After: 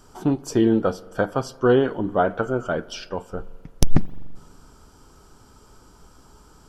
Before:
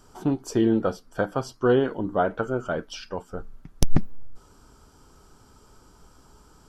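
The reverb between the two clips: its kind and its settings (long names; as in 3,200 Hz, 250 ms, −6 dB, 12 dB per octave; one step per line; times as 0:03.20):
spring reverb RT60 1.9 s, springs 42 ms, chirp 60 ms, DRR 19.5 dB
level +3 dB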